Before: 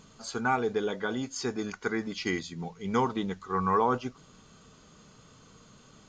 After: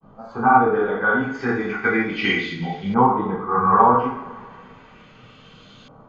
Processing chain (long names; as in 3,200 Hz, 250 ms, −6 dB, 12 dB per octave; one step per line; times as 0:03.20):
granular cloud, spray 29 ms, pitch spread up and down by 0 semitones
coupled-rooms reverb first 0.54 s, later 2.3 s, from −18 dB, DRR −8 dB
auto-filter low-pass saw up 0.34 Hz 870–3,600 Hz
level +1 dB